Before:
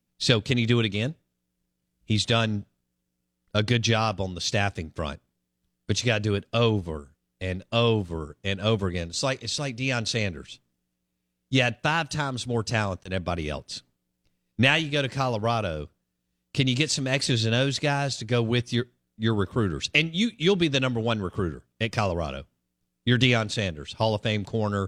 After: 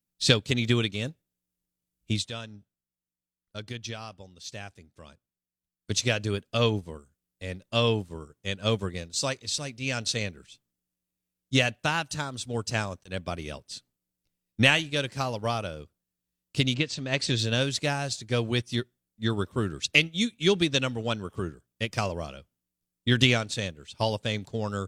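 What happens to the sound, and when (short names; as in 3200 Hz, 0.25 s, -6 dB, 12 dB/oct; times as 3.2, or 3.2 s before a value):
2.12–5.95 dip -8.5 dB, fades 0.15 s
16.73–17.37 LPF 2800 Hz -> 7000 Hz
whole clip: high shelf 6500 Hz +11.5 dB; upward expander 1.5:1, over -37 dBFS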